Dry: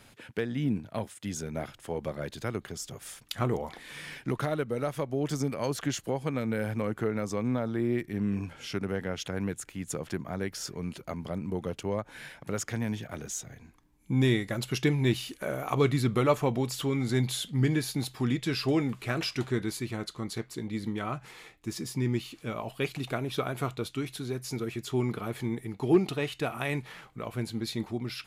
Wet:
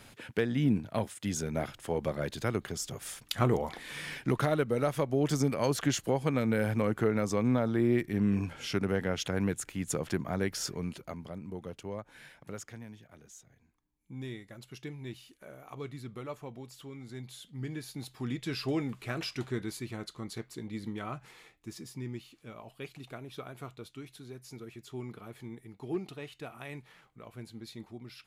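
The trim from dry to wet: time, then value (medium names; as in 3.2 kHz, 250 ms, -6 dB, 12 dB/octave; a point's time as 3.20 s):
10.67 s +2 dB
11.35 s -8 dB
12.48 s -8 dB
12.92 s -16.5 dB
17.23 s -16.5 dB
18.53 s -5 dB
21.20 s -5 dB
22.28 s -12 dB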